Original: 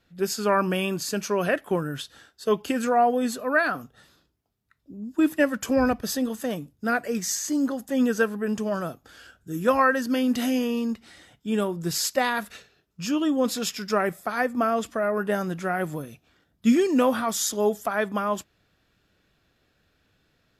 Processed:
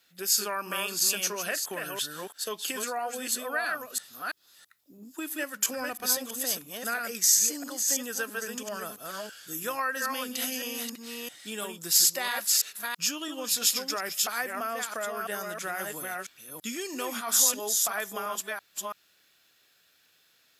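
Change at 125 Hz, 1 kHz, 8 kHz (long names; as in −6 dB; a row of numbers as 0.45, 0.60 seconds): −17.0, −7.5, +8.0 decibels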